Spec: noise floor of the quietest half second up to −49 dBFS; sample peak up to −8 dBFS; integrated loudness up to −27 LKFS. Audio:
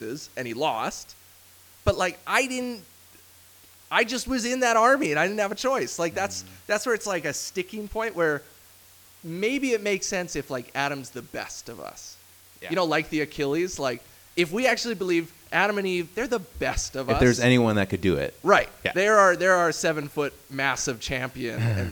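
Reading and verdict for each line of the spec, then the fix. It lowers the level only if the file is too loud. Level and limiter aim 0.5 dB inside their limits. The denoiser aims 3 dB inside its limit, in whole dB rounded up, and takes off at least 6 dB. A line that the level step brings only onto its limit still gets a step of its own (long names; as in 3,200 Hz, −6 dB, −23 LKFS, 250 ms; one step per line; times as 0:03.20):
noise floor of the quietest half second −53 dBFS: in spec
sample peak −3.5 dBFS: out of spec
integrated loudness −25.0 LKFS: out of spec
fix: level −2.5 dB
brickwall limiter −8.5 dBFS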